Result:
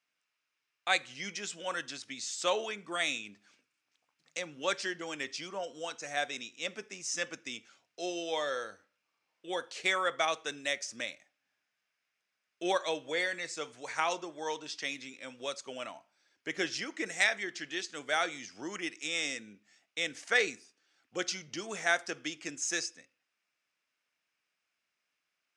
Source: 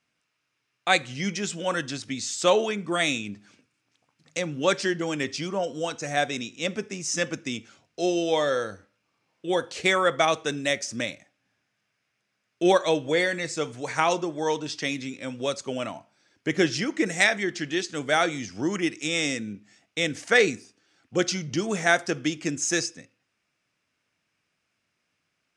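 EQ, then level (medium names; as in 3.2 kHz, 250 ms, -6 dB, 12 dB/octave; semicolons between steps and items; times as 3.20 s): high-pass 840 Hz 6 dB/octave; treble shelf 8.8 kHz -4 dB; -5.5 dB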